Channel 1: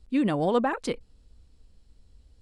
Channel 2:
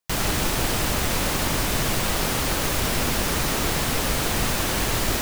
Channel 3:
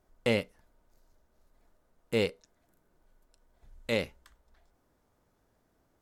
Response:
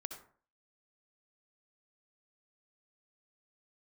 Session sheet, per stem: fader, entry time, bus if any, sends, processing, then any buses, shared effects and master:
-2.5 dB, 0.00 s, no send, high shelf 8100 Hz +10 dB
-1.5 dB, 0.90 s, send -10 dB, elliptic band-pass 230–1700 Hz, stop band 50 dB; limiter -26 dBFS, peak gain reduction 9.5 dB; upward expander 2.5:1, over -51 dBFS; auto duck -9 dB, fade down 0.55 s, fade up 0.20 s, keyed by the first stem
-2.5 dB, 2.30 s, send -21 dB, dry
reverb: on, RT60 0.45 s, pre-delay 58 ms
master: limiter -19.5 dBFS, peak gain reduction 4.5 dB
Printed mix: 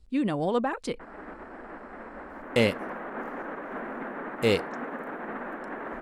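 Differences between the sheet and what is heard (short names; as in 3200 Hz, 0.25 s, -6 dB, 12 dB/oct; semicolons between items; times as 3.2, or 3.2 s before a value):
stem 1: missing high shelf 8100 Hz +10 dB; stem 3 -2.5 dB -> +4.0 dB; master: missing limiter -19.5 dBFS, peak gain reduction 4.5 dB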